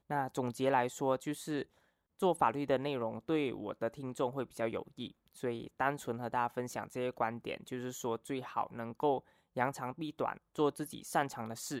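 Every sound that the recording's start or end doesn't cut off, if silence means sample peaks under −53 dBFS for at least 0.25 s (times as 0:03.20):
0:02.19–0:09.20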